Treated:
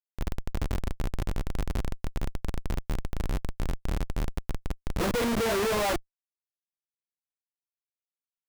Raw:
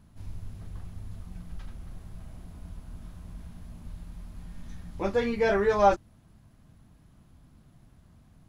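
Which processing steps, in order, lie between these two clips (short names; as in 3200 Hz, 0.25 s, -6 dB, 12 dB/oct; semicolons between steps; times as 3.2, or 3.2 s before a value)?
Schmitt trigger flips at -37 dBFS; gain +6.5 dB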